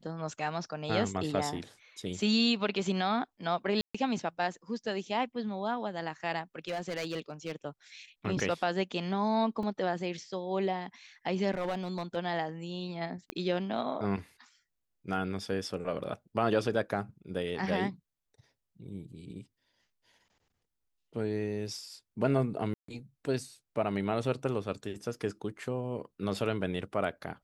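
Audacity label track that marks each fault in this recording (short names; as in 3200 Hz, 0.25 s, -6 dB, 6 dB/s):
3.810000	3.940000	gap 0.135 s
6.680000	7.520000	clipped -30 dBFS
9.630000	9.630000	gap 2.3 ms
11.510000	12.170000	clipped -28.5 dBFS
13.300000	13.300000	pop -20 dBFS
22.740000	22.880000	gap 0.144 s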